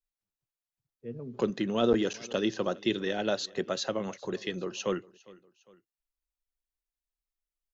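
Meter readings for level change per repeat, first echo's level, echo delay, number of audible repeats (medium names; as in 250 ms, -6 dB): -6.0 dB, -23.0 dB, 405 ms, 2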